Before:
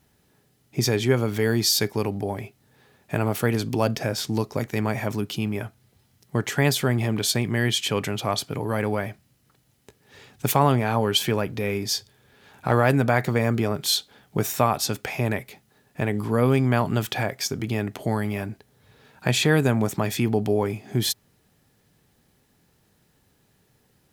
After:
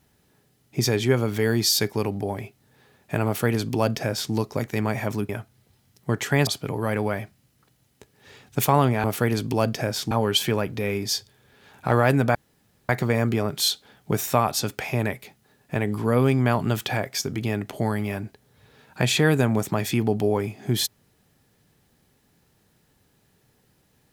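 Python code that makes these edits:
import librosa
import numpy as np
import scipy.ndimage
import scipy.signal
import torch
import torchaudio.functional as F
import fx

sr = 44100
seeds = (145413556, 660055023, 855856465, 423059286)

y = fx.edit(x, sr, fx.duplicate(start_s=3.26, length_s=1.07, to_s=10.91),
    fx.cut(start_s=5.29, length_s=0.26),
    fx.cut(start_s=6.73, length_s=1.61),
    fx.insert_room_tone(at_s=13.15, length_s=0.54), tone=tone)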